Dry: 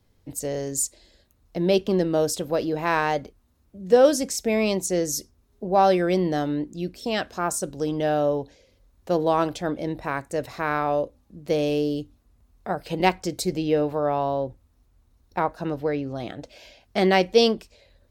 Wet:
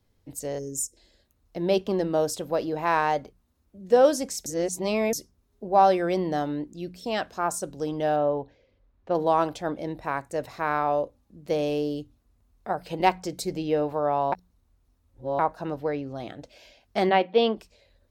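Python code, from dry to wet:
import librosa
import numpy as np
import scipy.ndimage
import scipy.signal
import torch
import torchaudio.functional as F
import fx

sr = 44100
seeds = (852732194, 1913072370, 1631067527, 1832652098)

y = fx.spec_box(x, sr, start_s=0.59, length_s=0.38, low_hz=550.0, high_hz=5100.0, gain_db=-20)
y = fx.lowpass(y, sr, hz=2700.0, slope=12, at=(8.16, 9.15))
y = fx.ellip_bandpass(y, sr, low_hz=200.0, high_hz=3500.0, order=3, stop_db=40, at=(17.09, 17.55), fade=0.02)
y = fx.edit(y, sr, fx.reverse_span(start_s=4.46, length_s=0.67),
    fx.reverse_span(start_s=14.32, length_s=1.07), tone=tone)
y = fx.hum_notches(y, sr, base_hz=60, count=3)
y = fx.dynamic_eq(y, sr, hz=880.0, q=1.2, threshold_db=-36.0, ratio=4.0, max_db=6)
y = F.gain(torch.from_numpy(y), -4.5).numpy()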